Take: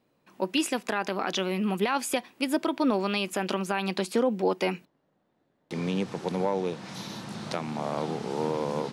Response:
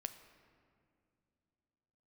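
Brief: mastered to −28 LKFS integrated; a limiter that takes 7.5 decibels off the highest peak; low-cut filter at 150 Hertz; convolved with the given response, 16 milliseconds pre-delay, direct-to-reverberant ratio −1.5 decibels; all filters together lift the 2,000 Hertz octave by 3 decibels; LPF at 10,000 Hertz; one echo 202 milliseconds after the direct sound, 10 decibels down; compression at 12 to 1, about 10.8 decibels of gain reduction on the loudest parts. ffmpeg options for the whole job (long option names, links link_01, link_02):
-filter_complex "[0:a]highpass=150,lowpass=10000,equalizer=frequency=2000:width_type=o:gain=4,acompressor=threshold=-31dB:ratio=12,alimiter=level_in=1.5dB:limit=-24dB:level=0:latency=1,volume=-1.5dB,aecho=1:1:202:0.316,asplit=2[link_01][link_02];[1:a]atrim=start_sample=2205,adelay=16[link_03];[link_02][link_03]afir=irnorm=-1:irlink=0,volume=4.5dB[link_04];[link_01][link_04]amix=inputs=2:normalize=0,volume=5dB"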